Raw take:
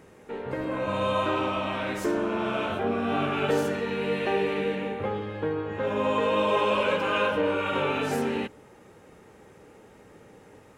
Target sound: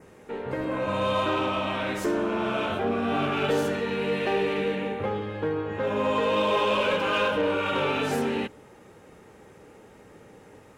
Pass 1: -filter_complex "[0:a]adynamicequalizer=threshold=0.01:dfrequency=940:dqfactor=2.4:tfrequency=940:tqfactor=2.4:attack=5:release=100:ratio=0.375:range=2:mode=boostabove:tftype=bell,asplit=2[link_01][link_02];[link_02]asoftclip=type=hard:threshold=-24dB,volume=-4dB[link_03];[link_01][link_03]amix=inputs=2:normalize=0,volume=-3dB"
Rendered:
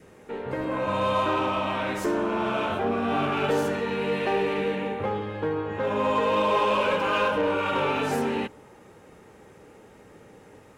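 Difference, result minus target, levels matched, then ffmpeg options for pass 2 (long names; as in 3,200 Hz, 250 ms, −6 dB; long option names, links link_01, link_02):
4,000 Hz band −2.5 dB
-filter_complex "[0:a]adynamicequalizer=threshold=0.01:dfrequency=3500:dqfactor=2.4:tfrequency=3500:tqfactor=2.4:attack=5:release=100:ratio=0.375:range=2:mode=boostabove:tftype=bell,asplit=2[link_01][link_02];[link_02]asoftclip=type=hard:threshold=-24dB,volume=-4dB[link_03];[link_01][link_03]amix=inputs=2:normalize=0,volume=-3dB"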